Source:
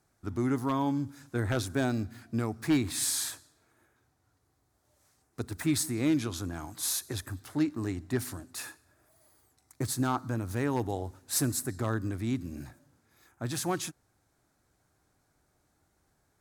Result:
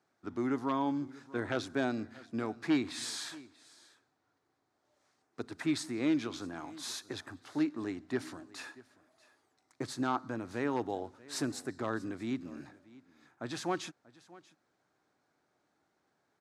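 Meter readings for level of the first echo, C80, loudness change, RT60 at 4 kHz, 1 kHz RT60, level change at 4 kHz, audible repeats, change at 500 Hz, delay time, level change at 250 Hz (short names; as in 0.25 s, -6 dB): -21.0 dB, none, -4.5 dB, none, none, -4.0 dB, 1, -2.0 dB, 0.637 s, -3.0 dB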